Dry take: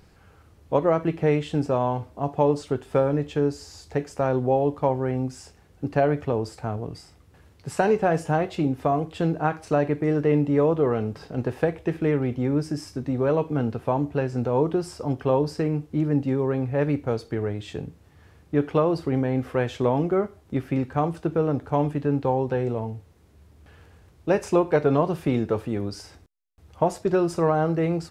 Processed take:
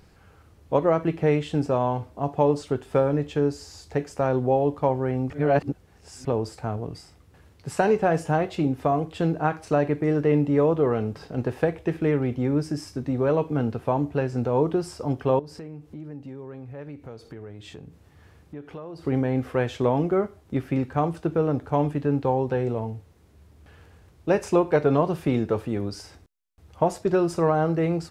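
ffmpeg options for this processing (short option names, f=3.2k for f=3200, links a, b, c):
-filter_complex "[0:a]asettb=1/sr,asplit=3[a][b][c];[a]atrim=end=15.394[d];[b]atrim=start=15.39:end=19.05,asetpts=PTS-STARTPTS,afade=t=in:d=0.004:c=qsin,afade=t=out:st=3.656:d=0.004:c=qsin,acompressor=threshold=-40dB:ratio=3:attack=3.2:release=140:knee=1:detection=peak[e];[c]atrim=start=19.046[f];[d][e]acrossfade=d=0.004:c1=hsin:c2=qsin[g];[g][f]acrossfade=d=0.004:c1=qsin:c2=hsin,asplit=3[h][i][j];[h]atrim=end=5.302[k];[i]atrim=start=5.298:end=6.252,asetpts=PTS-STARTPTS,areverse[l];[j]atrim=start=6.248[m];[k][l]acrossfade=d=0.004:c1=hsin:c2=hsin[n];[n][m]acrossfade=d=0.004:c1=hsin:c2=hsin"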